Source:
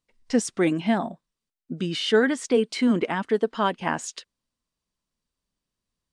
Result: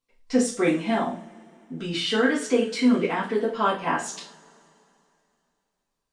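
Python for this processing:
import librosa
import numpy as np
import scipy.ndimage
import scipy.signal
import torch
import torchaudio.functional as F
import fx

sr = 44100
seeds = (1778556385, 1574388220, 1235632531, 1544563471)

y = fx.transient(x, sr, attack_db=-3, sustain_db=3, at=(0.94, 2.11))
y = fx.rev_double_slope(y, sr, seeds[0], early_s=0.36, late_s=2.8, knee_db=-27, drr_db=-7.0)
y = y * librosa.db_to_amplitude(-6.0)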